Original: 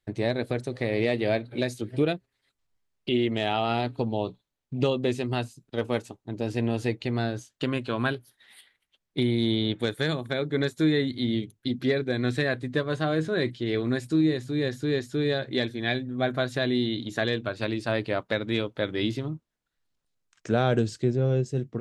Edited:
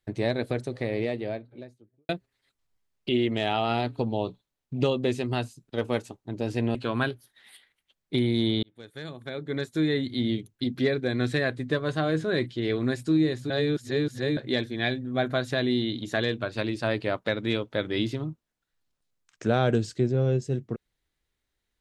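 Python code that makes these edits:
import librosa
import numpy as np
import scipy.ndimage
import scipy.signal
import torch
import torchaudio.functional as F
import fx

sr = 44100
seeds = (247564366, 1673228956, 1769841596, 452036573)

y = fx.studio_fade_out(x, sr, start_s=0.42, length_s=1.67)
y = fx.edit(y, sr, fx.cut(start_s=6.75, length_s=1.04),
    fx.fade_in_span(start_s=9.67, length_s=1.57),
    fx.reverse_span(start_s=14.54, length_s=0.87), tone=tone)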